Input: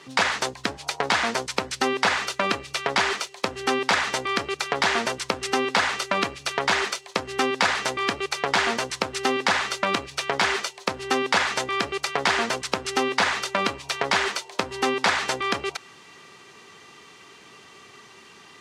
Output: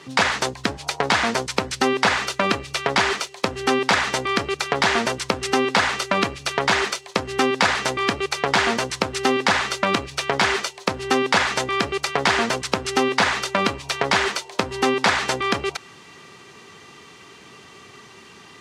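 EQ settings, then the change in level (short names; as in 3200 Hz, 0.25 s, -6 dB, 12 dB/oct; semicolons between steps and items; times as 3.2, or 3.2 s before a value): low shelf 260 Hz +6.5 dB; +2.5 dB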